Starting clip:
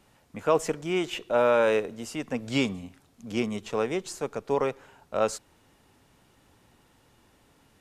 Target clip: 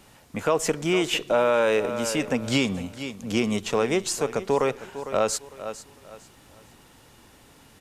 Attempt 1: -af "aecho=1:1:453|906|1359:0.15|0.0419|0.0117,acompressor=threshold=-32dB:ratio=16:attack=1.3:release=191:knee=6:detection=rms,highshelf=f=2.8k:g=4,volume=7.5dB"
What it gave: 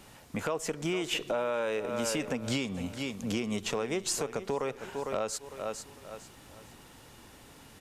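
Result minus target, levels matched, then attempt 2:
compressor: peak gain reduction +10.5 dB
-af "aecho=1:1:453|906|1359:0.15|0.0419|0.0117,acompressor=threshold=-21dB:ratio=16:attack=1.3:release=191:knee=6:detection=rms,highshelf=f=2.8k:g=4,volume=7.5dB"

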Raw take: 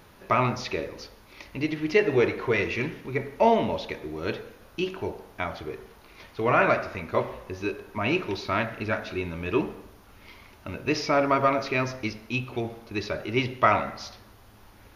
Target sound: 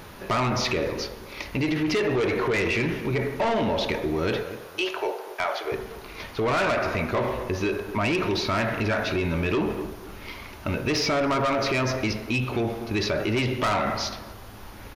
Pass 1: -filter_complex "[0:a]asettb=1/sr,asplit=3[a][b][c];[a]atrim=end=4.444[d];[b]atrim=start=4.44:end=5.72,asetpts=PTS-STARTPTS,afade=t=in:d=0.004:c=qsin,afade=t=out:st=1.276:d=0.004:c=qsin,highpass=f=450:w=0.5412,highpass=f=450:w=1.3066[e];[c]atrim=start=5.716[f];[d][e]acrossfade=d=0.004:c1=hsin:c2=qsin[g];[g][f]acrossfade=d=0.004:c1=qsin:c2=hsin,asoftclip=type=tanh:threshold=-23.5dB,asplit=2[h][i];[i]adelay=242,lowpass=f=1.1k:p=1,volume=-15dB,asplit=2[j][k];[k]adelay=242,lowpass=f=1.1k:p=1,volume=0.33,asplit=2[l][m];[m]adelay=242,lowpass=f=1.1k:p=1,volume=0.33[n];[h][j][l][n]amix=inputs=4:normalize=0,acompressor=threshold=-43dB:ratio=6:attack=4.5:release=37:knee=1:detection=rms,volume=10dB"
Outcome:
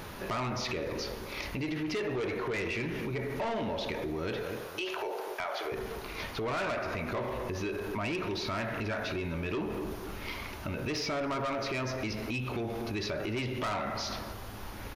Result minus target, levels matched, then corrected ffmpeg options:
compressor: peak gain reduction +9 dB
-filter_complex "[0:a]asettb=1/sr,asplit=3[a][b][c];[a]atrim=end=4.444[d];[b]atrim=start=4.44:end=5.72,asetpts=PTS-STARTPTS,afade=t=in:d=0.004:c=qsin,afade=t=out:st=1.276:d=0.004:c=qsin,highpass=f=450:w=0.5412,highpass=f=450:w=1.3066[e];[c]atrim=start=5.716[f];[d][e]acrossfade=d=0.004:c1=hsin:c2=qsin[g];[g][f]acrossfade=d=0.004:c1=qsin:c2=hsin,asoftclip=type=tanh:threshold=-23.5dB,asplit=2[h][i];[i]adelay=242,lowpass=f=1.1k:p=1,volume=-15dB,asplit=2[j][k];[k]adelay=242,lowpass=f=1.1k:p=1,volume=0.33,asplit=2[l][m];[m]adelay=242,lowpass=f=1.1k:p=1,volume=0.33[n];[h][j][l][n]amix=inputs=4:normalize=0,acompressor=threshold=-32dB:ratio=6:attack=4.5:release=37:knee=1:detection=rms,volume=10dB"

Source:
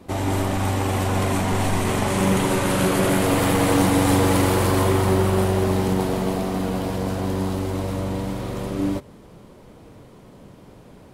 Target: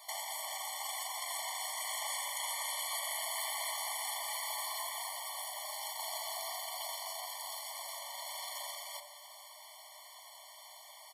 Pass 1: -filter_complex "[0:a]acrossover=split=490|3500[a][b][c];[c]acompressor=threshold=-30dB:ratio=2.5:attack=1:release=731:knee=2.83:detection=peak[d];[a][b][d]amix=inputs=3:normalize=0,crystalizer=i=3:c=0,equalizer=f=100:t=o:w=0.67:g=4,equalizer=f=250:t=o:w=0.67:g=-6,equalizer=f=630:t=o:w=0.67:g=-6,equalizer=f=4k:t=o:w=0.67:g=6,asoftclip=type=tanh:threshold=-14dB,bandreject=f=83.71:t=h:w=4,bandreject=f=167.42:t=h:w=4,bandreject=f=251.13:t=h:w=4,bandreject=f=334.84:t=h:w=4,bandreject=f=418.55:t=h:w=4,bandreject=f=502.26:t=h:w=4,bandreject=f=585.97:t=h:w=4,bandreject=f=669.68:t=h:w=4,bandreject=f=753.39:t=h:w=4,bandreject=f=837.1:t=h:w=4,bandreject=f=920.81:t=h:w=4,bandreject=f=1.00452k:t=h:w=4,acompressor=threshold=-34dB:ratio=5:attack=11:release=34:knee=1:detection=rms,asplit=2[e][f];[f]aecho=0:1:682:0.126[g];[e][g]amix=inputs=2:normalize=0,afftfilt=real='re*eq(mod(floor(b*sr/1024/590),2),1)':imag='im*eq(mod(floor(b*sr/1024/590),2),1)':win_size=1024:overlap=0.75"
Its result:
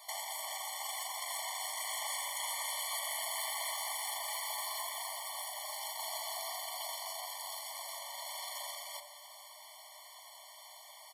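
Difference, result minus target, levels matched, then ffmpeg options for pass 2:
soft clip: distortion +17 dB
-filter_complex "[0:a]acrossover=split=490|3500[a][b][c];[c]acompressor=threshold=-30dB:ratio=2.5:attack=1:release=731:knee=2.83:detection=peak[d];[a][b][d]amix=inputs=3:normalize=0,crystalizer=i=3:c=0,equalizer=f=100:t=o:w=0.67:g=4,equalizer=f=250:t=o:w=0.67:g=-6,equalizer=f=630:t=o:w=0.67:g=-6,equalizer=f=4k:t=o:w=0.67:g=6,asoftclip=type=tanh:threshold=-3dB,bandreject=f=83.71:t=h:w=4,bandreject=f=167.42:t=h:w=4,bandreject=f=251.13:t=h:w=4,bandreject=f=334.84:t=h:w=4,bandreject=f=418.55:t=h:w=4,bandreject=f=502.26:t=h:w=4,bandreject=f=585.97:t=h:w=4,bandreject=f=669.68:t=h:w=4,bandreject=f=753.39:t=h:w=4,bandreject=f=837.1:t=h:w=4,bandreject=f=920.81:t=h:w=4,bandreject=f=1.00452k:t=h:w=4,acompressor=threshold=-34dB:ratio=5:attack=11:release=34:knee=1:detection=rms,asplit=2[e][f];[f]aecho=0:1:682:0.126[g];[e][g]amix=inputs=2:normalize=0,afftfilt=real='re*eq(mod(floor(b*sr/1024/590),2),1)':imag='im*eq(mod(floor(b*sr/1024/590),2),1)':win_size=1024:overlap=0.75"

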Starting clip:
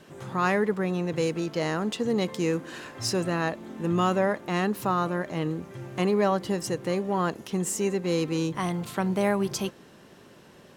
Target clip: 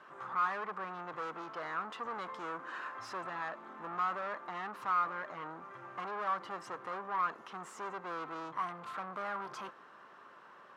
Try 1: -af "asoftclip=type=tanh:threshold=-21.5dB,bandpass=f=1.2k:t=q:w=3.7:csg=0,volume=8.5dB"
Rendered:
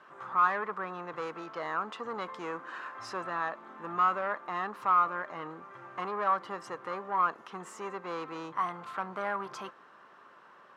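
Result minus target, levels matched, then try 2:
soft clip: distortion -8 dB
-af "asoftclip=type=tanh:threshold=-32dB,bandpass=f=1.2k:t=q:w=3.7:csg=0,volume=8.5dB"

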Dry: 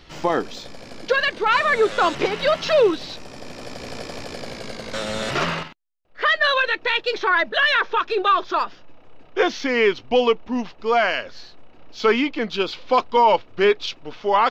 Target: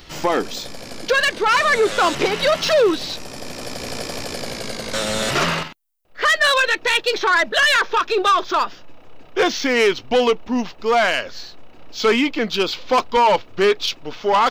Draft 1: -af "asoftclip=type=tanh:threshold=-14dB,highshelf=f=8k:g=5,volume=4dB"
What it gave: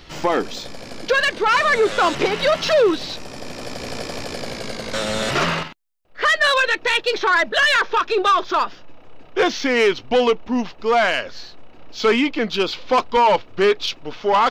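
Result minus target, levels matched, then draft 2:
8000 Hz band -4.0 dB
-af "asoftclip=type=tanh:threshold=-14dB,highshelf=f=8k:g=15.5,volume=4dB"

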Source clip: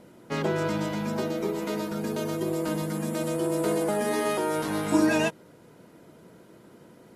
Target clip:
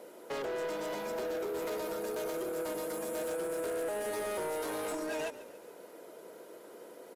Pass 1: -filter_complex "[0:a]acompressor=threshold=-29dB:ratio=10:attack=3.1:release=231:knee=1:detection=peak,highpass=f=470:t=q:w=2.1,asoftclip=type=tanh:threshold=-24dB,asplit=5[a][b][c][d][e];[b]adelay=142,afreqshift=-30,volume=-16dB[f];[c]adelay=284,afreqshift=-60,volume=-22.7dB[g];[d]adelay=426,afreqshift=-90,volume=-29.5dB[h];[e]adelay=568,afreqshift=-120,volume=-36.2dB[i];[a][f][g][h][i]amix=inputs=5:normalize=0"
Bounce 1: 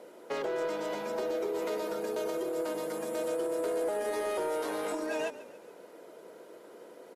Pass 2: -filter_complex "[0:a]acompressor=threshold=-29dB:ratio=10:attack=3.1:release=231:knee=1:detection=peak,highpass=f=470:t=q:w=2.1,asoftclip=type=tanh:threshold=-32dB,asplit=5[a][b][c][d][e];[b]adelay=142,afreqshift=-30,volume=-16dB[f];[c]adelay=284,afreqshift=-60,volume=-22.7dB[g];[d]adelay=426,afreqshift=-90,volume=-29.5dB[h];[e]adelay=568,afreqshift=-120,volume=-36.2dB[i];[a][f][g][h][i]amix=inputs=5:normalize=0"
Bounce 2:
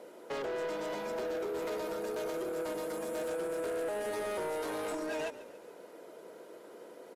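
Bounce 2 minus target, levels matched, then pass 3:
8000 Hz band -4.0 dB
-filter_complex "[0:a]acompressor=threshold=-29dB:ratio=10:attack=3.1:release=231:knee=1:detection=peak,highpass=f=470:t=q:w=2.1,highshelf=f=9.8k:g=10.5,asoftclip=type=tanh:threshold=-32dB,asplit=5[a][b][c][d][e];[b]adelay=142,afreqshift=-30,volume=-16dB[f];[c]adelay=284,afreqshift=-60,volume=-22.7dB[g];[d]adelay=426,afreqshift=-90,volume=-29.5dB[h];[e]adelay=568,afreqshift=-120,volume=-36.2dB[i];[a][f][g][h][i]amix=inputs=5:normalize=0"

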